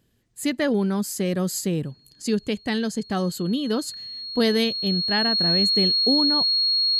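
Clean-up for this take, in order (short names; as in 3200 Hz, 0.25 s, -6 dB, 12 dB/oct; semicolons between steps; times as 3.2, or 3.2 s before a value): notch 4300 Hz, Q 30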